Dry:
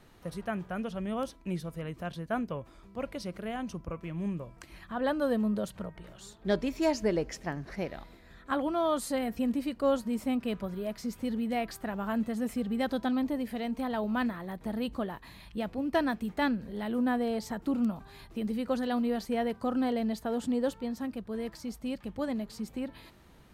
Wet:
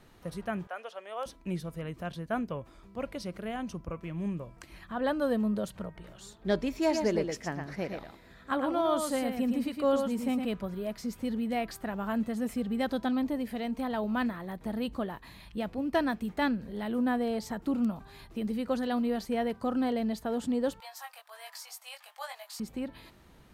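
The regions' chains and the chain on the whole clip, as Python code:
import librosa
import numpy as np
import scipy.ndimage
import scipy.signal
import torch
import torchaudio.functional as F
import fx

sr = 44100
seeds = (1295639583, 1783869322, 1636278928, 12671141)

y = fx.chain(x, sr, fx.highpass(hz=520.0, slope=24),
    fx.high_shelf(hz=7600.0, db=-7.0), at=(0.67, 1.26))
y = fx.chain(y, sr, fx.highpass(hz=76.0, slope=6),
    fx.echo_single(ms=113, db=-5.5), at=(6.78, 10.45))
y = fx.chain(y, sr, fx.steep_highpass(hz=690.0, slope=48),
    fx.high_shelf(hz=6200.0, db=8.5),
    fx.doubler(ms=20.0, db=-3.5), at=(20.8, 22.6))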